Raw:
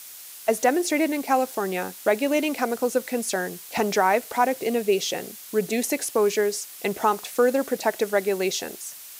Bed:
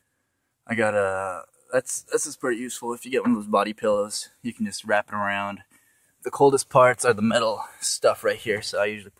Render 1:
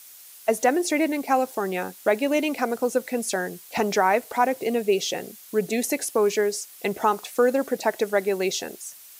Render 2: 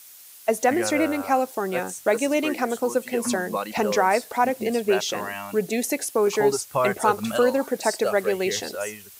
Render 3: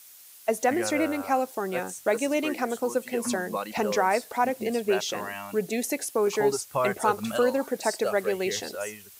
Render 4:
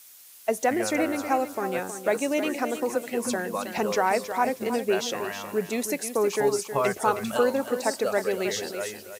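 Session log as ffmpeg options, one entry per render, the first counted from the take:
-af "afftdn=nr=6:nf=-42"
-filter_complex "[1:a]volume=-7dB[a];[0:a][a]amix=inputs=2:normalize=0"
-af "volume=-3.5dB"
-af "aecho=1:1:317|634|951:0.316|0.0759|0.0182"

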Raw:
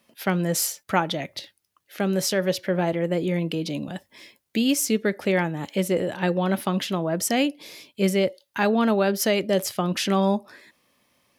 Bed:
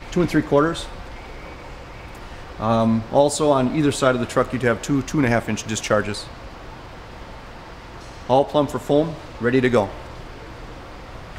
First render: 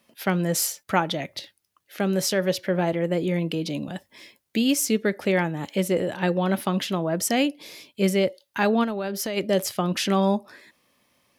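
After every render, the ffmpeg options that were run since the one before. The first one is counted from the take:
-filter_complex "[0:a]asplit=3[a][b][c];[a]afade=t=out:st=8.83:d=0.02[d];[b]acompressor=threshold=-25dB:ratio=6:attack=3.2:release=140:knee=1:detection=peak,afade=t=in:st=8.83:d=0.02,afade=t=out:st=9.36:d=0.02[e];[c]afade=t=in:st=9.36:d=0.02[f];[d][e][f]amix=inputs=3:normalize=0"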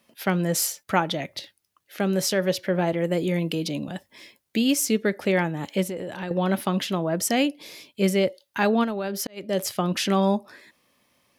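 -filter_complex "[0:a]asettb=1/sr,asplit=3[a][b][c];[a]atrim=end=2.984[d];[b]atrim=start=2.98:end=3.68,asetpts=PTS-STARTPTS,afade=t=in:d=0.004:c=qsin,afade=t=out:st=0.696:d=0.004:c=qsin,highshelf=f=5.1k:g=7[e];[c]atrim=start=3.676[f];[d][e]acrossfade=d=0.004:c1=hsin:c2=qsin[g];[g][f]acrossfade=d=0.004:c1=qsin:c2=hsin,asettb=1/sr,asplit=3[h][i][j];[h]atrim=end=5.834[k];[i]atrim=start=5.83:end=6.31,asetpts=PTS-STARTPTS,afade=t=in:d=0.004:c=qsin,afade=t=out:st=0.476:d=0.004:c=qsin,acompressor=threshold=-29dB:ratio=4:attack=3.2:release=140:knee=1:detection=peak[l];[j]atrim=start=6.306[m];[k][l]acrossfade=d=0.004:c1=hsin:c2=qsin[n];[n][m]acrossfade=d=0.004:c1=qsin:c2=hsin,asplit=2[o][p];[o]atrim=end=9.27,asetpts=PTS-STARTPTS,afade=t=out:st=9.266:d=0.004:c=hsin[q];[p]atrim=start=9.27,asetpts=PTS-STARTPTS,afade=t=in:d=0.4[r];[q][r]concat=n=2:v=0:a=1"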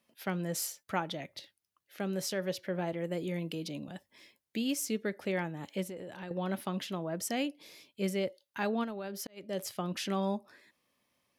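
-af "volume=-11dB"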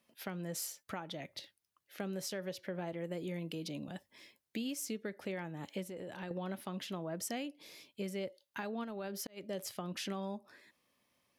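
-af "alimiter=level_in=1dB:limit=-24dB:level=0:latency=1:release=414,volume=-1dB,acompressor=threshold=-38dB:ratio=2.5"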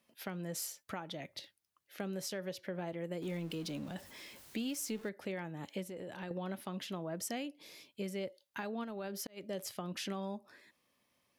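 -filter_complex "[0:a]asettb=1/sr,asplit=3[a][b][c];[a]atrim=end=3.224[d];[b]atrim=start=3.22:end=5.09,asetpts=PTS-STARTPTS,afade=t=in:d=0.004:c=qsin,afade=t=out:st=1.866:d=0.004:c=qsin,aeval=exprs='val(0)+0.5*0.00335*sgn(val(0))':c=same[e];[c]atrim=start=5.086[f];[d][e]acrossfade=d=0.004:c1=hsin:c2=qsin[g];[g][f]acrossfade=d=0.004:c1=qsin:c2=hsin"

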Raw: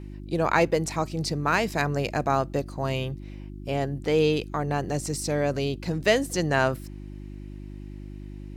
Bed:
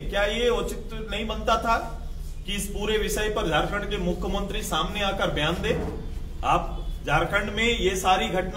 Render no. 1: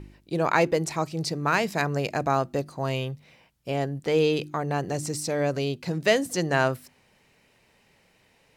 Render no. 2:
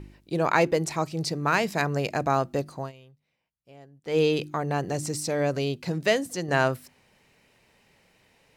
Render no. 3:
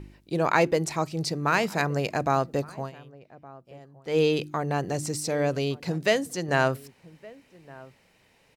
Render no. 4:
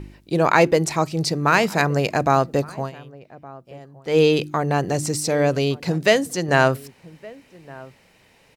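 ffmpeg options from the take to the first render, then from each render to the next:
-af "bandreject=f=50:t=h:w=4,bandreject=f=100:t=h:w=4,bandreject=f=150:t=h:w=4,bandreject=f=200:t=h:w=4,bandreject=f=250:t=h:w=4,bandreject=f=300:t=h:w=4,bandreject=f=350:t=h:w=4"
-filter_complex "[0:a]asplit=4[a][b][c][d];[a]atrim=end=2.92,asetpts=PTS-STARTPTS,afade=t=out:st=2.76:d=0.16:silence=0.0794328[e];[b]atrim=start=2.92:end=4.03,asetpts=PTS-STARTPTS,volume=-22dB[f];[c]atrim=start=4.03:end=6.48,asetpts=PTS-STARTPTS,afade=t=in:d=0.16:silence=0.0794328,afade=t=out:st=1.88:d=0.57:silence=0.501187[g];[d]atrim=start=6.48,asetpts=PTS-STARTPTS,afade=t=in:d=0.004:c=hsin:silence=0.501187[h];[e][f][g][h]concat=n=4:v=0:a=1"
-filter_complex "[0:a]asplit=2[a][b];[b]adelay=1166,volume=-21dB,highshelf=f=4k:g=-26.2[c];[a][c]amix=inputs=2:normalize=0"
-af "volume=6.5dB,alimiter=limit=-2dB:level=0:latency=1"

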